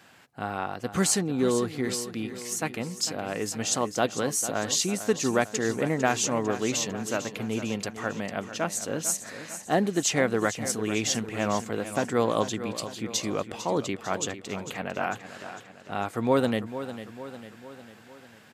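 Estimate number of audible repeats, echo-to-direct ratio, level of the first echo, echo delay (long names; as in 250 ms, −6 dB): 5, −10.5 dB, −12.0 dB, 450 ms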